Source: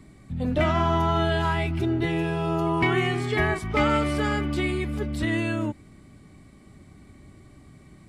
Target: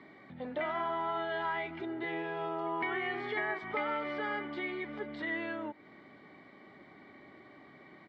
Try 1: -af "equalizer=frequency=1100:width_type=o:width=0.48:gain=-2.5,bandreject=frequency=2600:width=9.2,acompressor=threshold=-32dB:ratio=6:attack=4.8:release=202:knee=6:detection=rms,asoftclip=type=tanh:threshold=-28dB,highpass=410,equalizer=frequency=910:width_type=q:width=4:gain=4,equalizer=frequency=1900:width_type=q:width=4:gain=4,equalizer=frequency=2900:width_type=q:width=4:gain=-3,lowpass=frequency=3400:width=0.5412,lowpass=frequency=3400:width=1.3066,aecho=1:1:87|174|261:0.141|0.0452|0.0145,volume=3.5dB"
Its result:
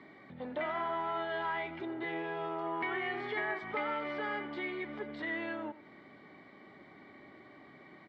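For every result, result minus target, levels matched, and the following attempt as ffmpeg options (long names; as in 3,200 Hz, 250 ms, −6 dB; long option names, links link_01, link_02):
soft clipping: distortion +15 dB; echo-to-direct +11.5 dB
-af "equalizer=frequency=1100:width_type=o:width=0.48:gain=-2.5,bandreject=frequency=2600:width=9.2,acompressor=threshold=-32dB:ratio=6:attack=4.8:release=202:knee=6:detection=rms,asoftclip=type=tanh:threshold=-19.5dB,highpass=410,equalizer=frequency=910:width_type=q:width=4:gain=4,equalizer=frequency=1900:width_type=q:width=4:gain=4,equalizer=frequency=2900:width_type=q:width=4:gain=-3,lowpass=frequency=3400:width=0.5412,lowpass=frequency=3400:width=1.3066,aecho=1:1:87|174|261:0.141|0.0452|0.0145,volume=3.5dB"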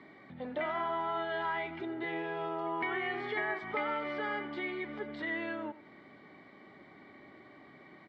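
echo-to-direct +11.5 dB
-af "equalizer=frequency=1100:width_type=o:width=0.48:gain=-2.5,bandreject=frequency=2600:width=9.2,acompressor=threshold=-32dB:ratio=6:attack=4.8:release=202:knee=6:detection=rms,asoftclip=type=tanh:threshold=-19.5dB,highpass=410,equalizer=frequency=910:width_type=q:width=4:gain=4,equalizer=frequency=1900:width_type=q:width=4:gain=4,equalizer=frequency=2900:width_type=q:width=4:gain=-3,lowpass=frequency=3400:width=0.5412,lowpass=frequency=3400:width=1.3066,aecho=1:1:87|174:0.0376|0.012,volume=3.5dB"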